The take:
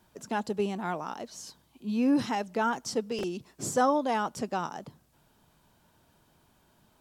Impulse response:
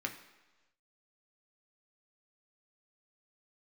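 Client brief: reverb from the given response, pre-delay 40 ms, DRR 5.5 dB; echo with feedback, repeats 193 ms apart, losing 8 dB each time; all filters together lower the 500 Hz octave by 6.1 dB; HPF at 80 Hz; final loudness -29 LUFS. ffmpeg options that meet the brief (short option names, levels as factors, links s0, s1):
-filter_complex "[0:a]highpass=80,equalizer=f=500:t=o:g=-7.5,aecho=1:1:193|386|579|772|965:0.398|0.159|0.0637|0.0255|0.0102,asplit=2[s0][s1];[1:a]atrim=start_sample=2205,adelay=40[s2];[s1][s2]afir=irnorm=-1:irlink=0,volume=0.398[s3];[s0][s3]amix=inputs=2:normalize=0,volume=1.26"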